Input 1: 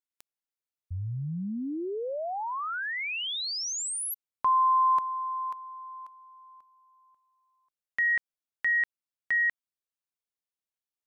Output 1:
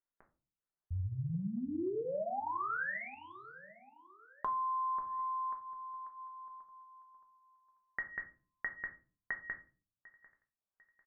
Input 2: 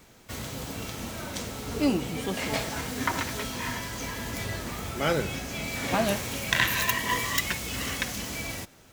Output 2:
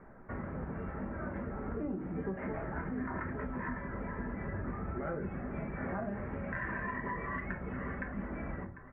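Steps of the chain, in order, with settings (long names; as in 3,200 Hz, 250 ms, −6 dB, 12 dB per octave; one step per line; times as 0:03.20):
Butterworth low-pass 1,800 Hz 48 dB per octave
on a send: repeating echo 747 ms, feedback 38%, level −23 dB
on the sum: brickwall limiter −22.5 dBFS
reverb reduction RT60 0.54 s
dynamic equaliser 870 Hz, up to −6 dB, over −47 dBFS, Q 0.81
rectangular room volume 200 cubic metres, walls furnished, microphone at 1.2 metres
downward compressor, threshold −34 dBFS
mains-hum notches 60/120/180/240 Hz
level +1 dB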